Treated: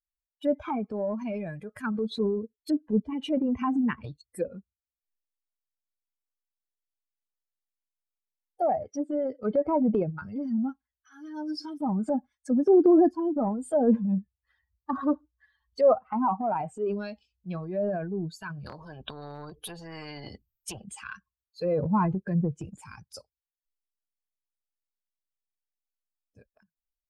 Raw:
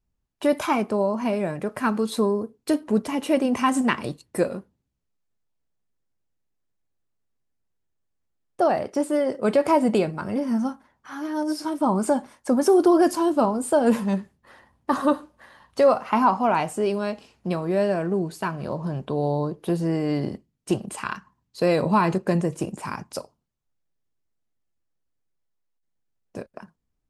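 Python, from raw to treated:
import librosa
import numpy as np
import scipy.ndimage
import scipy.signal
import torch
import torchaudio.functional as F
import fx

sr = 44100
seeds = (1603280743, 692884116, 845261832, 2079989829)

y = fx.bin_expand(x, sr, power=2.0)
y = fx.env_lowpass_down(y, sr, base_hz=740.0, full_db=-24.5)
y = fx.transient(y, sr, attack_db=-4, sustain_db=7)
y = fx.spectral_comp(y, sr, ratio=4.0, at=(18.66, 20.84))
y = y * librosa.db_to_amplitude(2.0)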